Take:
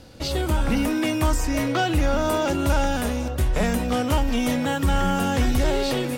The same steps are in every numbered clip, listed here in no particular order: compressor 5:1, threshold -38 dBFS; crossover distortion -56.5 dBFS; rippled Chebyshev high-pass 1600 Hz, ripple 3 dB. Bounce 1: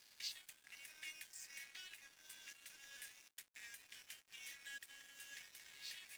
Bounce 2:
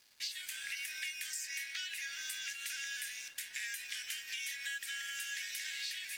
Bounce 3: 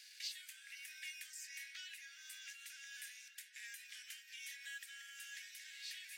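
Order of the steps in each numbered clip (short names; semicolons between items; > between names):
compressor > rippled Chebyshev high-pass > crossover distortion; rippled Chebyshev high-pass > crossover distortion > compressor; crossover distortion > compressor > rippled Chebyshev high-pass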